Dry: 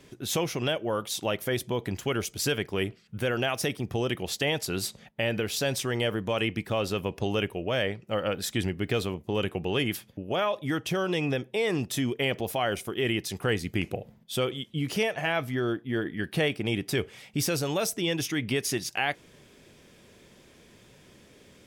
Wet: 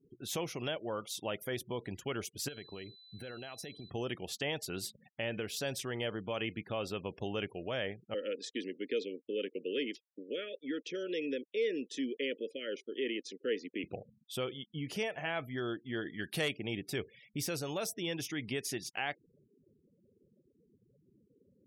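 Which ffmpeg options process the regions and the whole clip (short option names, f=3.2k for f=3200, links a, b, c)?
-filter_complex "[0:a]asettb=1/sr,asplit=3[a][b][c];[a]atrim=end=2.484[d];[b]atrim=start=2.48:end=3.9,asetpts=PTS-STARTPTS,afade=t=in:d=0.004:c=qsin,afade=t=out:st=1.416:d=0.004:c=qsin,acompressor=threshold=-32dB:ratio=8:attack=3.2:release=140:knee=1:detection=peak,aeval=exprs='val(0)+0.00447*sin(2*PI*4000*n/s)':c=same[e];[c]atrim=start=3.896[f];[d][e]acrossfade=d=0.004:c1=hsin:c2=qsin[g];[g][f]acrossfade=d=0.004:c1=qsin:c2=hsin,asettb=1/sr,asplit=3[h][i][j];[h]atrim=end=8.144[k];[i]atrim=start=8.14:end=13.84,asetpts=PTS-STARTPTS,afade=t=in:d=0.004:c=qsin,afade=t=out:st=5.696:d=0.004:c=qsin,aeval=exprs='sgn(val(0))*max(abs(val(0))-0.00398,0)':c=same,asuperstop=centerf=880:order=12:qfactor=1.1,highpass=f=260:w=0.5412,highpass=f=260:w=1.3066,equalizer=f=260:t=q:w=4:g=7,equalizer=f=460:t=q:w=4:g=6,equalizer=f=960:t=q:w=4:g=-8,equalizer=f=1.5k:t=q:w=4:g=-7,equalizer=f=8.1k:t=q:w=4:g=-6,lowpass=f=8.2k:w=0.5412,lowpass=f=8.2k:w=1.3066[l];[j]atrim=start=13.836[m];[k][l]acrossfade=d=0.004:c1=hsin:c2=qsin[n];[n][m]acrossfade=d=0.004:c1=qsin:c2=hsin,asettb=1/sr,asplit=3[o][p][q];[o]atrim=end=15.574[r];[p]atrim=start=15.57:end=16.52,asetpts=PTS-STARTPTS,afade=t=in:d=0.004:c=qsin,afade=t=out:st=0.946:d=0.004:c=qsin,highshelf=f=3.1k:g=10.5,asoftclip=type=hard:threshold=-16.5dB[s];[q]atrim=start=16.516[t];[r][s]acrossfade=d=0.004:c1=hsin:c2=qsin[u];[u][t]acrossfade=d=0.004:c1=qsin:c2=hsin,afftfilt=real='re*gte(hypot(re,im),0.00708)':imag='im*gte(hypot(re,im),0.00708)':win_size=1024:overlap=0.75,lowshelf=f=76:g=-8.5,volume=-8.5dB"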